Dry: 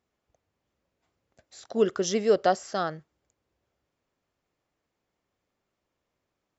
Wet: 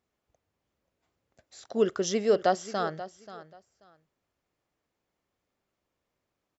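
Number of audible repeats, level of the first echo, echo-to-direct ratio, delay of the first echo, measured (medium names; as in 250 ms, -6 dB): 2, -15.0 dB, -15.0 dB, 534 ms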